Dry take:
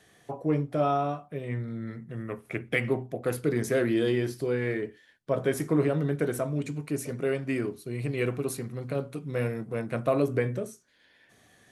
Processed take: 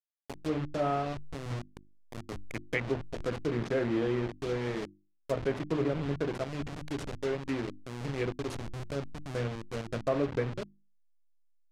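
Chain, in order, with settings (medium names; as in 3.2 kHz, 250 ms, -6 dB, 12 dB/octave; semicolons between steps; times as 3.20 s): send-on-delta sampling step -28 dBFS; low-pass that closes with the level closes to 2.8 kHz, closed at -22.5 dBFS; hum notches 50/100/150/200/250/300/350 Hz; trim -3.5 dB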